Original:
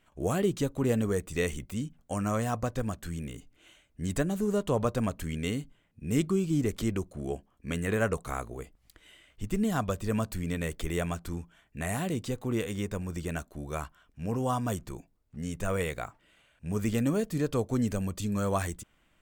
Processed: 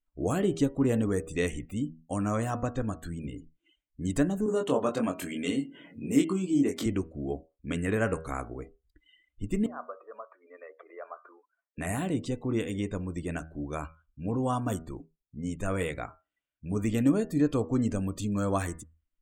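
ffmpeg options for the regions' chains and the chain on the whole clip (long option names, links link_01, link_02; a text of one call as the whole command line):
ffmpeg -i in.wav -filter_complex "[0:a]asettb=1/sr,asplit=3[link_01][link_02][link_03];[link_01]atrim=end=4.464[link_04];[link_02]atrim=start=4.46:end=6.86,asetpts=PTS-STARTPTS,afade=type=in:duration=0.004:curve=qsin,afade=type=out:start_time=2.396:duration=0.004:curve=qsin,highpass=220,acompressor=mode=upward:threshold=-30dB:ratio=2.5:attack=3.2:release=140:knee=2.83:detection=peak,asplit=2[link_05][link_06];[link_06]adelay=22,volume=-3.5dB[link_07];[link_05][link_07]amix=inputs=2:normalize=0,atrim=end_sample=105840[link_08];[link_03]atrim=start=6.856[link_09];[link_04][link_08]acrossfade=duration=0.004:curve1=hsin:curve2=qsin[link_10];[link_10][link_09]acrossfade=duration=0.004:curve1=qsin:curve2=hsin,asettb=1/sr,asplit=3[link_11][link_12][link_13];[link_11]atrim=end=9.664[link_14];[link_12]atrim=start=9.66:end=11.78,asetpts=PTS-STARTPTS,afade=type=in:duration=0.004:curve=qsin,afade=type=out:start_time=2.116:duration=0.004:curve=qsin,acompressor=threshold=-37dB:ratio=3:attack=3.2:release=140:knee=1:detection=peak,aeval=exprs='0.0355*(abs(mod(val(0)/0.0355+3,4)-2)-1)':channel_layout=same,highpass=frequency=470:width=0.5412,highpass=frequency=470:width=1.3066,equalizer=frequency=580:width_type=q:width=4:gain=4,equalizer=frequency=1200:width_type=q:width=4:gain=7,equalizer=frequency=1900:width_type=q:width=4:gain=-3,lowpass=frequency=2200:width=0.5412,lowpass=frequency=2200:width=1.3066[link_15];[link_13]atrim=start=11.776[link_16];[link_14][link_15]acrossfade=duration=0.004:curve1=hsin:curve2=qsin[link_17];[link_17][link_16]acrossfade=duration=0.004:curve1=qsin:curve2=hsin,bandreject=frequency=80.32:width_type=h:width=4,bandreject=frequency=160.64:width_type=h:width=4,bandreject=frequency=240.96:width_type=h:width=4,bandreject=frequency=321.28:width_type=h:width=4,bandreject=frequency=401.6:width_type=h:width=4,bandreject=frequency=481.92:width_type=h:width=4,bandreject=frequency=562.24:width_type=h:width=4,bandreject=frequency=642.56:width_type=h:width=4,bandreject=frequency=722.88:width_type=h:width=4,bandreject=frequency=803.2:width_type=h:width=4,bandreject=frequency=883.52:width_type=h:width=4,bandreject=frequency=963.84:width_type=h:width=4,bandreject=frequency=1044.16:width_type=h:width=4,bandreject=frequency=1124.48:width_type=h:width=4,bandreject=frequency=1204.8:width_type=h:width=4,bandreject=frequency=1285.12:width_type=h:width=4,bandreject=frequency=1365.44:width_type=h:width=4,bandreject=frequency=1445.76:width_type=h:width=4,bandreject=frequency=1526.08:width_type=h:width=4,bandreject=frequency=1606.4:width_type=h:width=4,bandreject=frequency=1686.72:width_type=h:width=4,bandreject=frequency=1767.04:width_type=h:width=4,bandreject=frequency=1847.36:width_type=h:width=4,bandreject=frequency=1927.68:width_type=h:width=4,bandreject=frequency=2008:width_type=h:width=4,bandreject=frequency=2088.32:width_type=h:width=4,bandreject=frequency=2168.64:width_type=h:width=4,bandreject=frequency=2248.96:width_type=h:width=4,bandreject=frequency=2329.28:width_type=h:width=4,bandreject=frequency=2409.6:width_type=h:width=4,bandreject=frequency=2489.92:width_type=h:width=4,bandreject=frequency=2570.24:width_type=h:width=4,bandreject=frequency=2650.56:width_type=h:width=4,bandreject=frequency=2730.88:width_type=h:width=4,bandreject=frequency=2811.2:width_type=h:width=4,bandreject=frequency=2891.52:width_type=h:width=4,bandreject=frequency=2971.84:width_type=h:width=4,bandreject=frequency=3052.16:width_type=h:width=4,bandreject=frequency=3132.48:width_type=h:width=4,afftdn=noise_reduction=29:noise_floor=-49,equalizer=frequency=290:width=5.8:gain=9" out.wav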